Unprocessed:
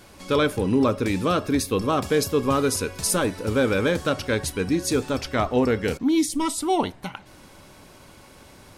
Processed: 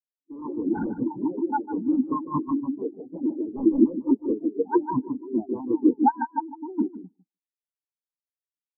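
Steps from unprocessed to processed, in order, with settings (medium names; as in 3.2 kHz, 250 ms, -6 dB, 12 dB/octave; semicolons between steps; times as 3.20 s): high-order bell 1.7 kHz -8.5 dB; ever faster or slower copies 133 ms, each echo +3 st, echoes 2, each echo -6 dB; cascade formant filter u; bass shelf 370 Hz -9 dB; sine folder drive 13 dB, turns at -18.5 dBFS; harmonic-percussive split harmonic -14 dB; feedback delay 151 ms, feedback 35%, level -3 dB; spectral contrast expander 4:1; trim +7.5 dB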